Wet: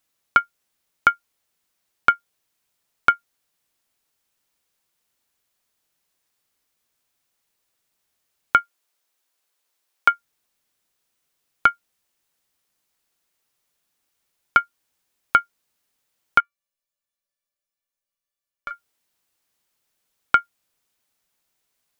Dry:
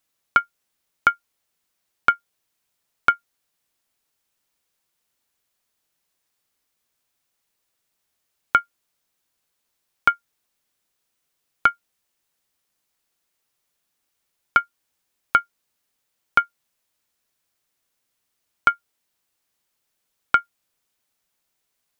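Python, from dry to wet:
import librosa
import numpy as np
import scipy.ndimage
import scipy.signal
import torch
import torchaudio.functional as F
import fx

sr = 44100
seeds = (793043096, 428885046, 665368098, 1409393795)

y = fx.highpass(x, sr, hz=370.0, slope=12, at=(8.57, 10.09), fade=0.02)
y = fx.comb_fb(y, sr, f0_hz=580.0, decay_s=0.21, harmonics='all', damping=0.0, mix_pct=90, at=(16.4, 18.71))
y = y * librosa.db_to_amplitude(1.0)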